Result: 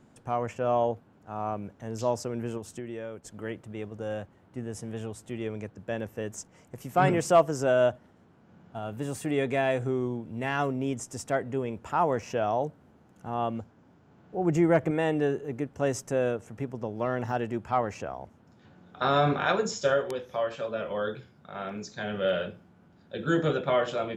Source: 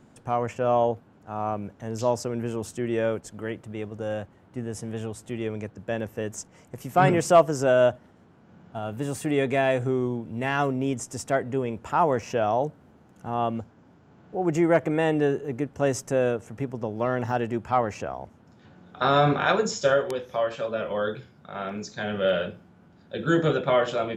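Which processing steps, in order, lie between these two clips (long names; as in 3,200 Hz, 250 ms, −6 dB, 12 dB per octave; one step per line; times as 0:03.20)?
0:02.57–0:03.25: downward compressor 6 to 1, threshold −31 dBFS, peak gain reduction 10.5 dB
0:14.37–0:14.91: low-shelf EQ 200 Hz +8 dB
level −3.5 dB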